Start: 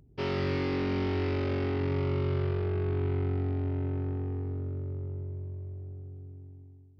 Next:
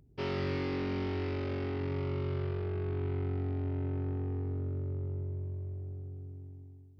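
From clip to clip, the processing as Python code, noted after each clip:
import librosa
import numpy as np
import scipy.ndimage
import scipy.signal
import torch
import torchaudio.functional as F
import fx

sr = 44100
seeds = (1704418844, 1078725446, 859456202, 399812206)

y = fx.rider(x, sr, range_db=4, speed_s=2.0)
y = y * 10.0 ** (-3.5 / 20.0)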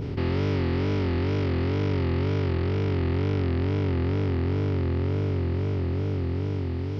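y = fx.bin_compress(x, sr, power=0.2)
y = fx.low_shelf(y, sr, hz=430.0, db=7.5)
y = fx.wow_flutter(y, sr, seeds[0], rate_hz=2.1, depth_cents=130.0)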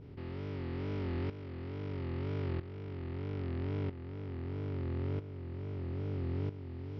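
y = fx.rider(x, sr, range_db=10, speed_s=0.5)
y = fx.tremolo_shape(y, sr, shape='saw_up', hz=0.77, depth_pct=75)
y = fx.air_absorb(y, sr, metres=110.0)
y = y * 10.0 ** (-9.0 / 20.0)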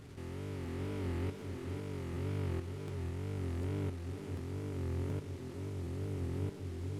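y = fx.delta_mod(x, sr, bps=64000, step_db=-51.0)
y = y + 10.0 ** (-7.5 / 20.0) * np.pad(y, (int(500 * sr / 1000.0), 0))[:len(y)]
y = fx.buffer_crackle(y, sr, first_s=0.65, period_s=0.74, block=512, kind='repeat')
y = y * 10.0 ** (-1.5 / 20.0)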